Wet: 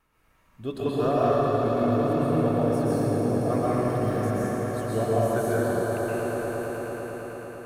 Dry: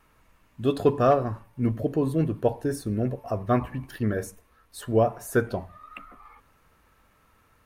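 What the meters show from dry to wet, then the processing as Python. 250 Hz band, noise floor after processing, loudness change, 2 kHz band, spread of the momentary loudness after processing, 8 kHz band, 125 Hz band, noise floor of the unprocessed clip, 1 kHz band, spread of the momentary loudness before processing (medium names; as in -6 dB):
+2.5 dB, -63 dBFS, +1.0 dB, +2.5 dB, 9 LU, +1.5 dB, +1.5 dB, -63 dBFS, +2.5 dB, 19 LU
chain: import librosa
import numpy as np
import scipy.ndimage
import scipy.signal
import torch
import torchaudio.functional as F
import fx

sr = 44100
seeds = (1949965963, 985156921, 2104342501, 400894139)

p1 = x + fx.echo_swell(x, sr, ms=111, loudest=5, wet_db=-10, dry=0)
p2 = fx.rev_plate(p1, sr, seeds[0], rt60_s=2.8, hf_ratio=0.75, predelay_ms=110, drr_db=-7.5)
y = p2 * 10.0 ** (-8.5 / 20.0)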